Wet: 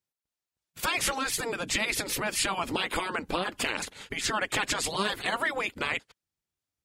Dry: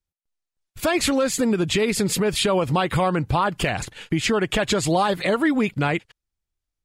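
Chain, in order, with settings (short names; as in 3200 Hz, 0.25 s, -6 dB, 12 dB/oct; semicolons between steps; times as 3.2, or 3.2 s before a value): spectral gate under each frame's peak -10 dB weak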